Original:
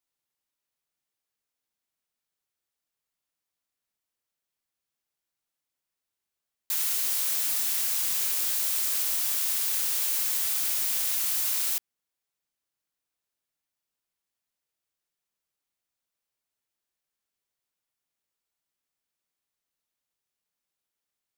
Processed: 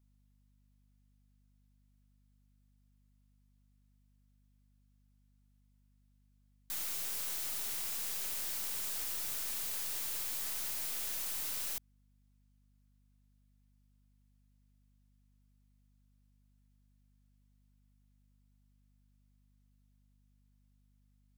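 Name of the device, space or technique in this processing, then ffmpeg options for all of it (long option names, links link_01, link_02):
valve amplifier with mains hum: -af "aeval=exprs='(tanh(70.8*val(0)+0.4)-tanh(0.4))/70.8':channel_layout=same,aeval=exprs='val(0)+0.000398*(sin(2*PI*50*n/s)+sin(2*PI*2*50*n/s)/2+sin(2*PI*3*50*n/s)/3+sin(2*PI*4*50*n/s)/4+sin(2*PI*5*50*n/s)/5)':channel_layout=same"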